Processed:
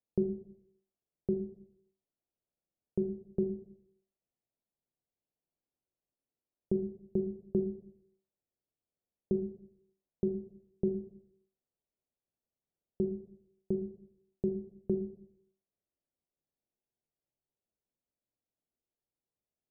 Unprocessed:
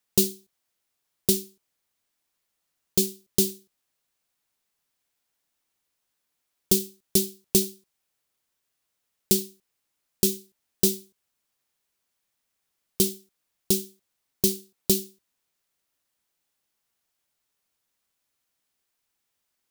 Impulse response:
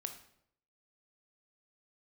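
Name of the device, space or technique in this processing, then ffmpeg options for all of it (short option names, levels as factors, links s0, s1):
next room: -filter_complex "[0:a]lowpass=f=670:w=0.5412,lowpass=f=670:w=1.3066[s0];[1:a]atrim=start_sample=2205[s1];[s0][s1]afir=irnorm=-1:irlink=0,volume=0.668"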